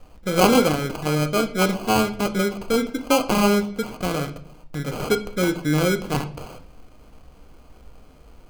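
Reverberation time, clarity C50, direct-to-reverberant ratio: 0.60 s, 14.0 dB, 6.0 dB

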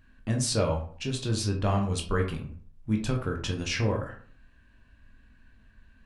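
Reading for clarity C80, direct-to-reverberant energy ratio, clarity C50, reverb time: 12.5 dB, 1.0 dB, 8.5 dB, 0.50 s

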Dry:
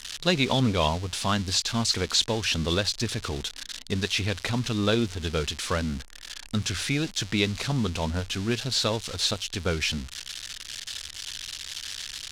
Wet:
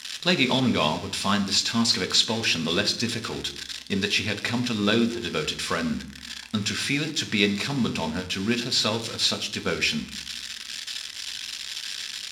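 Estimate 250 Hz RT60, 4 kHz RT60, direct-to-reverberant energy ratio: 0.95 s, 0.85 s, 6.5 dB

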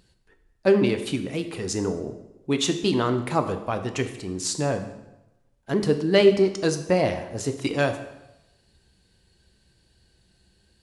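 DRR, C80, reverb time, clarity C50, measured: 7.0 dB, 12.0 dB, 0.95 s, 10.5 dB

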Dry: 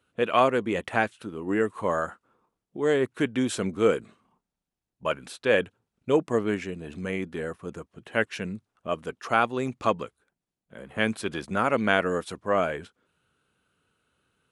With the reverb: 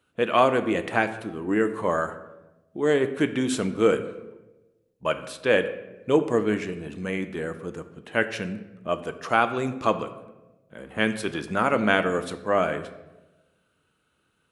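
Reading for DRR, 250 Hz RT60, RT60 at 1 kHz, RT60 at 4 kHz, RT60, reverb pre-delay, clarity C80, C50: 9.5 dB, 1.3 s, 0.95 s, 0.65 s, 1.1 s, 3 ms, 14.0 dB, 12.5 dB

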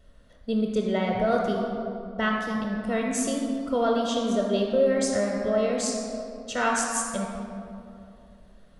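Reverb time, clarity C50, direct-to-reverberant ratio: 2.7 s, 1.0 dB, -0.5 dB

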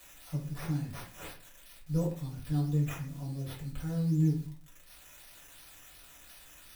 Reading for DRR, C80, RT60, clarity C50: -3.5 dB, 12.5 dB, 0.40 s, 7.5 dB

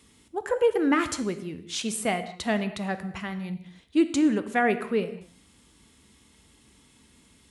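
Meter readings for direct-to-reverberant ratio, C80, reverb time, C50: 10.5 dB, 14.0 dB, no single decay rate, 12.0 dB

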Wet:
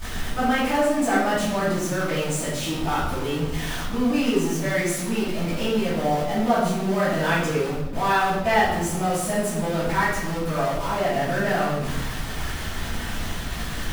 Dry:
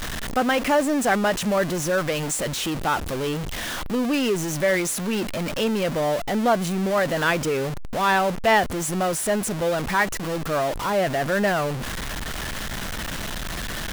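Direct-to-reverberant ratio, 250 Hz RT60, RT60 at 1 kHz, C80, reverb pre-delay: -14.0 dB, 1.4 s, 1.0 s, 4.5 dB, 3 ms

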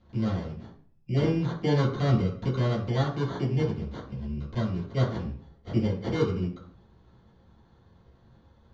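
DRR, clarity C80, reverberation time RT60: -7.5 dB, 10.5 dB, 0.50 s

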